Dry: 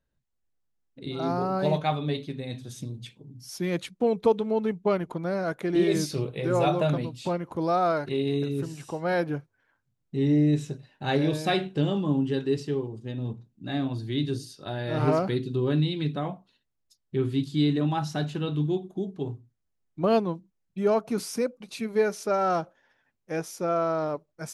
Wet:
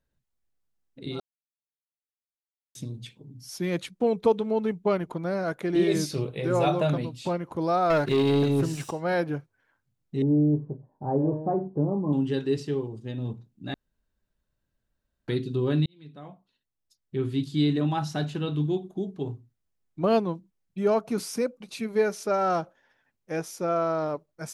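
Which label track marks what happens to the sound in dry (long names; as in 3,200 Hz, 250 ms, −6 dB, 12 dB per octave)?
1.200000	2.750000	silence
7.900000	8.910000	leveller curve on the samples passes 2
10.220000	12.130000	Chebyshev low-pass filter 990 Hz, order 4
13.740000	15.280000	fill with room tone
15.860000	17.540000	fade in linear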